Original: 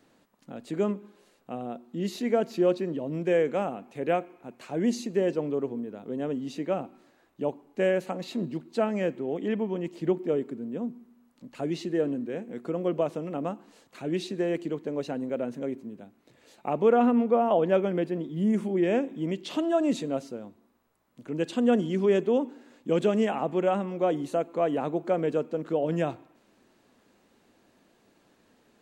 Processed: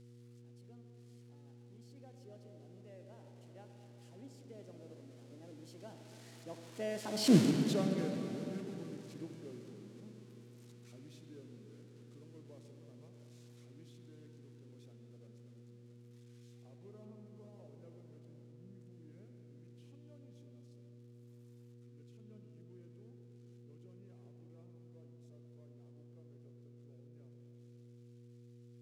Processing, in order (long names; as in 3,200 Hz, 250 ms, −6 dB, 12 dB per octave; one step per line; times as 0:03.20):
spike at every zero crossing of −19.5 dBFS
source passing by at 0:07.35, 44 m/s, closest 2.5 metres
low-pass filter 6,700 Hz 12 dB per octave
low-shelf EQ 310 Hz +7 dB
convolution reverb RT60 3.7 s, pre-delay 68 ms, DRR 4 dB
hum with harmonics 120 Hz, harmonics 4, −61 dBFS −6 dB per octave
level +3.5 dB